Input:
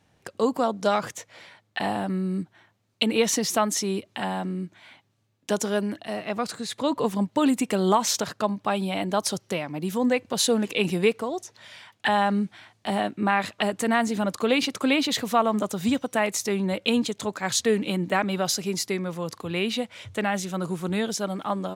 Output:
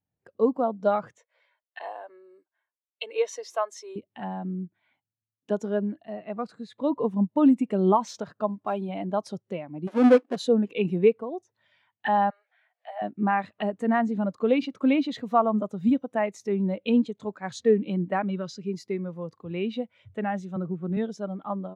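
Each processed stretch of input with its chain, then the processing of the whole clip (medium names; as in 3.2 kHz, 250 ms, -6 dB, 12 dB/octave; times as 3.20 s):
1.18–3.96 s: Bessel high-pass 580 Hz, order 8 + comb 1.9 ms, depth 32%
8.48–8.89 s: block-companded coder 5-bit + comb 2.9 ms, depth 33%
9.87–10.36 s: square wave that keeps the level + brick-wall FIR band-pass 220–12000 Hz
12.30–13.02 s: rippled Chebyshev high-pass 480 Hz, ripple 6 dB + upward compressor, threshold -41 dBFS
18.30–18.73 s: low-pass 7.9 kHz + peaking EQ 740 Hz -15 dB 0.39 oct
20.56–20.97 s: median filter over 9 samples + band-stop 1 kHz, Q 7.8 + three bands compressed up and down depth 70%
whole clip: treble shelf 4.5 kHz -10.5 dB; spectral contrast expander 1.5:1; trim +1 dB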